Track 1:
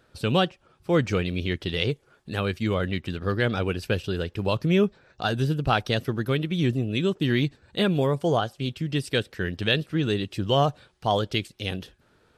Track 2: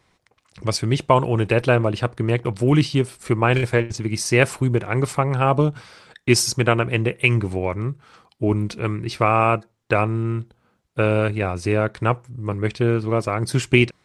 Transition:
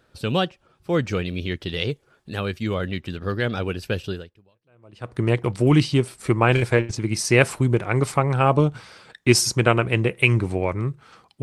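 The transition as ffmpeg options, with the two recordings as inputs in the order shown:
ffmpeg -i cue0.wav -i cue1.wav -filter_complex "[0:a]apad=whole_dur=11.42,atrim=end=11.42,atrim=end=5.16,asetpts=PTS-STARTPTS[link_01];[1:a]atrim=start=1.13:end=8.43,asetpts=PTS-STARTPTS[link_02];[link_01][link_02]acrossfade=duration=1.04:curve1=exp:curve2=exp" out.wav

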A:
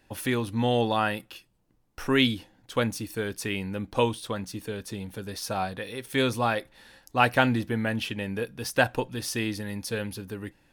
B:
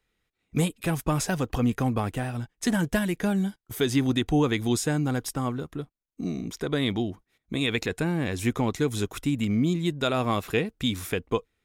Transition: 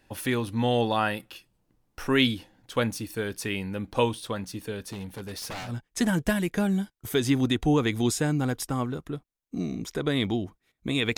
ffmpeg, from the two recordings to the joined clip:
ffmpeg -i cue0.wav -i cue1.wav -filter_complex "[0:a]asettb=1/sr,asplit=3[link_01][link_02][link_03];[link_01]atrim=end=4.834[link_04];[link_02]atrim=start=4.83:end=5.75,asetpts=PTS-STARTPTS,afade=type=in:duration=0.004:curve=qsin,afade=type=out:start_time=0.916:duration=0.004:curve=qsin,aeval=exprs='0.0299*(abs(mod(val(0)/0.0299+3,4)-2)-1)':channel_layout=same[link_05];[link_03]atrim=start=5.746[link_06];[link_04][link_05]acrossfade=duration=0.004:curve1=hsin:curve2=qsin[link_07];[link_07][link_06]acrossfade=duration=0.004:curve1=qsin:curve2=hsin,apad=whole_dur=11.17,atrim=end=11.17,atrim=end=5.75,asetpts=PTS-STARTPTS[link_08];[1:a]atrim=start=2.25:end=7.83,asetpts=PTS-STARTPTS[link_09];[link_08][link_09]acrossfade=duration=0.16:curve1=tri:curve2=tri" out.wav

